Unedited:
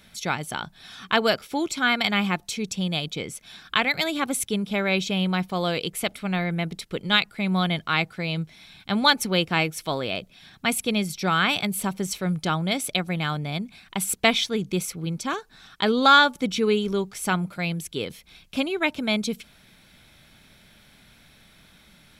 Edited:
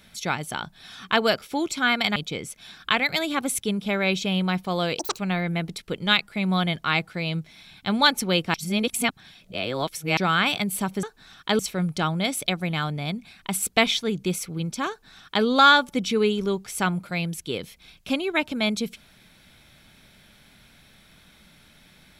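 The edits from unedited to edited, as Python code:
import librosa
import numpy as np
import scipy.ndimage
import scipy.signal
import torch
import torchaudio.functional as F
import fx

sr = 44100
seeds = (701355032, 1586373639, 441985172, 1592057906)

y = fx.edit(x, sr, fx.cut(start_s=2.16, length_s=0.85),
    fx.speed_span(start_s=5.84, length_s=0.38, speed=1.89),
    fx.reverse_span(start_s=9.57, length_s=1.63),
    fx.duplicate(start_s=15.36, length_s=0.56, to_s=12.06), tone=tone)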